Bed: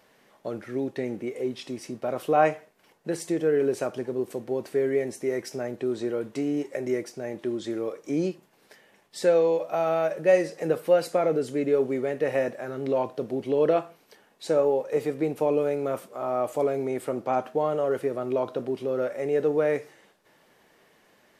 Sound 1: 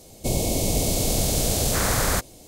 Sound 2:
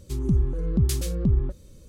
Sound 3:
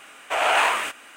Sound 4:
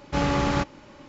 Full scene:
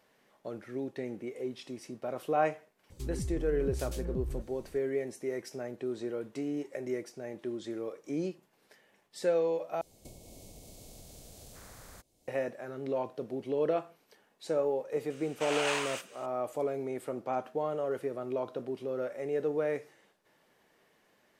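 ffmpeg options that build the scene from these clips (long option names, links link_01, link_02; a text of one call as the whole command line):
ffmpeg -i bed.wav -i cue0.wav -i cue1.wav -i cue2.wav -filter_complex "[0:a]volume=-7.5dB[link_01];[2:a]alimiter=limit=-24dB:level=0:latency=1:release=71[link_02];[1:a]acompressor=threshold=-32dB:ratio=10:attack=10:release=486:knee=1:detection=rms[link_03];[3:a]equalizer=frequency=5500:width=0.77:gain=14.5[link_04];[link_01]asplit=2[link_05][link_06];[link_05]atrim=end=9.814[link_07];[link_03]atrim=end=2.47,asetpts=PTS-STARTPTS,volume=-14.5dB[link_08];[link_06]atrim=start=12.276[link_09];[link_02]atrim=end=1.88,asetpts=PTS-STARTPTS,volume=-6dB,afade=type=in:duration=0.004:curve=hsin,afade=type=out:start_time=1.876:duration=0.004:curve=hsin,adelay=2900[link_10];[link_04]atrim=end=1.16,asetpts=PTS-STARTPTS,volume=-16.5dB,afade=type=in:duration=0.004:curve=hsin,afade=type=out:start_time=1.156:duration=0.004:curve=hsin,adelay=15100[link_11];[link_07][link_08]acrossfade=duration=0.004:curve1=hsin:curve2=hsin[link_12];[link_12][link_09]acrossfade=duration=0.004:curve1=hsin:curve2=hsin[link_13];[link_13][link_10][link_11]amix=inputs=3:normalize=0" out.wav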